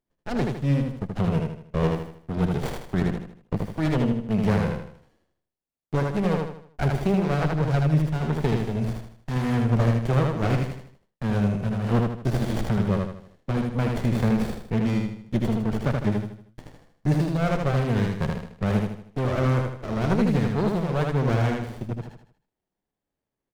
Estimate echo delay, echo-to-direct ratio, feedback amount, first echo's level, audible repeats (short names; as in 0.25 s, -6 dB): 78 ms, -2.0 dB, 41%, -3.0 dB, 5